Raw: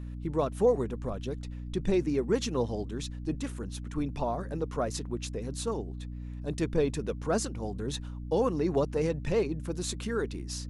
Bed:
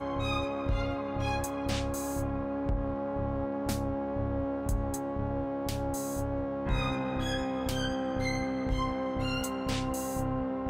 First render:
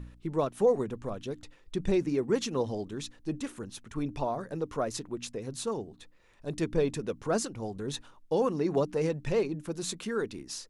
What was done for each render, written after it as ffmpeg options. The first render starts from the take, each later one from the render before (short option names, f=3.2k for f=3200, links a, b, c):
-af "bandreject=f=60:t=h:w=4,bandreject=f=120:t=h:w=4,bandreject=f=180:t=h:w=4,bandreject=f=240:t=h:w=4,bandreject=f=300:t=h:w=4"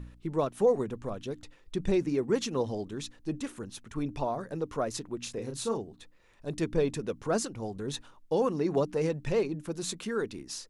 -filter_complex "[0:a]asettb=1/sr,asplit=3[a][b][c];[a]atrim=end=5.234[d];[b]atrim=start=5.23:end=5.78,asetpts=PTS-STARTPTS,afade=t=in:d=0.004:c=qsin,afade=t=out:st=0.546:d=0.004:c=qsin,asplit=2[e][f];[f]adelay=35,volume=-5.5dB[g];[e][g]amix=inputs=2:normalize=0,atrim=end_sample=24255[h];[c]atrim=start=5.776[i];[d][h]acrossfade=d=0.004:c1=hsin:c2=qsin[j];[j][i]acrossfade=d=0.004:c1=qsin:c2=hsin"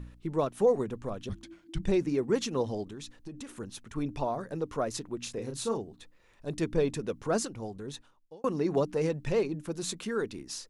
-filter_complex "[0:a]asplit=3[a][b][c];[a]afade=t=out:st=1.28:d=0.02[d];[b]afreqshift=-340,afade=t=in:st=1.28:d=0.02,afade=t=out:st=1.81:d=0.02[e];[c]afade=t=in:st=1.81:d=0.02[f];[d][e][f]amix=inputs=3:normalize=0,asplit=3[g][h][i];[g]afade=t=out:st=2.83:d=0.02[j];[h]acompressor=threshold=-38dB:ratio=12:attack=3.2:release=140:knee=1:detection=peak,afade=t=in:st=2.83:d=0.02,afade=t=out:st=3.48:d=0.02[k];[i]afade=t=in:st=3.48:d=0.02[l];[j][k][l]amix=inputs=3:normalize=0,asplit=2[m][n];[m]atrim=end=8.44,asetpts=PTS-STARTPTS,afade=t=out:st=7.43:d=1.01[o];[n]atrim=start=8.44,asetpts=PTS-STARTPTS,afade=t=in:d=0.004:c=hsin[p];[o][p]concat=n=2:v=0:a=1"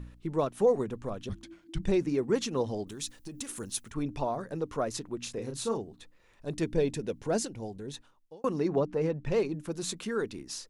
-filter_complex "[0:a]asplit=3[a][b][c];[a]afade=t=out:st=2.87:d=0.02[d];[b]aemphasis=mode=production:type=75kf,afade=t=in:st=2.87:d=0.02,afade=t=out:st=3.89:d=0.02[e];[c]afade=t=in:st=3.89:d=0.02[f];[d][e][f]amix=inputs=3:normalize=0,asettb=1/sr,asplit=3[g][h][i];[g]atrim=end=6.634[j];[h]atrim=start=6.63:end=7.94,asetpts=PTS-STARTPTS,afade=t=in:d=0.004:c=qsin,afade=t=out:st=1.306:d=0.004:c=qsin,equalizer=f=1.2k:w=3.8:g=-11.5[k];[i]atrim=start=7.936[l];[j][k]acrossfade=d=0.004:c1=hsin:c2=qsin[m];[m][l]acrossfade=d=0.004:c1=qsin:c2=hsin,asettb=1/sr,asplit=3[n][o][p];[n]atrim=end=8.684[q];[o]atrim=start=8.68:end=9.32,asetpts=PTS-STARTPTS,afade=t=in:d=0.004:c=qsin,afade=t=out:st=0.636:d=0.004:c=qsin,lowpass=f=1.9k:p=1[r];[p]atrim=start=9.316[s];[q][r]acrossfade=d=0.004:c1=hsin:c2=qsin[t];[t][s]acrossfade=d=0.004:c1=qsin:c2=hsin"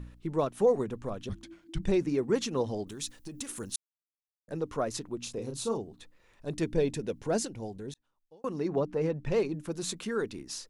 -filter_complex "[0:a]asettb=1/sr,asplit=3[a][b][c];[a]atrim=end=5.084[d];[b]atrim=start=5.08:end=5.82,asetpts=PTS-STARTPTS,afade=t=in:d=0.004:c=qsin,afade=t=out:st=0.736:d=0.004:c=qsin,equalizer=f=1.8k:w=1.9:g=-7.5[e];[c]atrim=start=5.816[f];[d][e]acrossfade=d=0.004:c1=hsin:c2=qsin[g];[g][f]acrossfade=d=0.004:c1=qsin:c2=hsin,asplit=4[h][i][j][k];[h]atrim=end=3.76,asetpts=PTS-STARTPTS,afade=t=out:st=3.756:d=0.004:c=hsin[l];[i]atrim=start=3.76:end=4.48,asetpts=PTS-STARTPTS,volume=0[m];[j]atrim=start=4.48:end=7.94,asetpts=PTS-STARTPTS,afade=t=in:d=0.004:c=hsin,afade=t=out:st=3.456:d=0.004:c=hsin[n];[k]atrim=start=7.94,asetpts=PTS-STARTPTS,afade=t=in:d=1.33:c=qsin[o];[l][m][n][o]concat=n=4:v=0:a=1"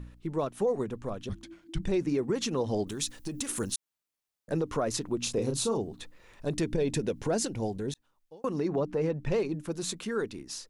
-af "dynaudnorm=f=390:g=13:m=7.5dB,alimiter=limit=-20dB:level=0:latency=1:release=129"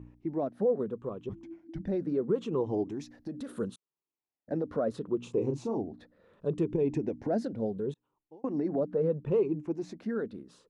-af "afftfilt=real='re*pow(10,9/40*sin(2*PI*(0.7*log(max(b,1)*sr/1024/100)/log(2)-(-0.73)*(pts-256)/sr)))':imag='im*pow(10,9/40*sin(2*PI*(0.7*log(max(b,1)*sr/1024/100)/log(2)-(-0.73)*(pts-256)/sr)))':win_size=1024:overlap=0.75,bandpass=f=320:t=q:w=0.66:csg=0"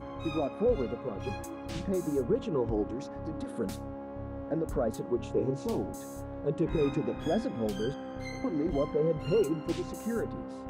-filter_complex "[1:a]volume=-8dB[a];[0:a][a]amix=inputs=2:normalize=0"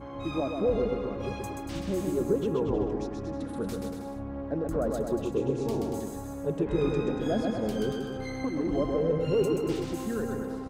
-af "aecho=1:1:130|234|317.2|383.8|437:0.631|0.398|0.251|0.158|0.1"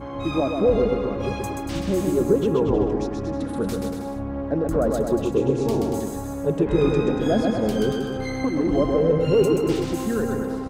-af "volume=7.5dB"